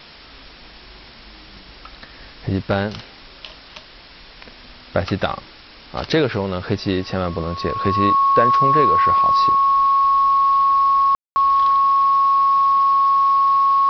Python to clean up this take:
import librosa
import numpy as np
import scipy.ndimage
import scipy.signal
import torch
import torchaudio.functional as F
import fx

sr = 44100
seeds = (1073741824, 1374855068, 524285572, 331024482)

y = fx.notch(x, sr, hz=1100.0, q=30.0)
y = fx.fix_ambience(y, sr, seeds[0], print_start_s=3.83, print_end_s=4.33, start_s=11.15, end_s=11.36)
y = fx.noise_reduce(y, sr, print_start_s=3.83, print_end_s=4.33, reduce_db=22.0)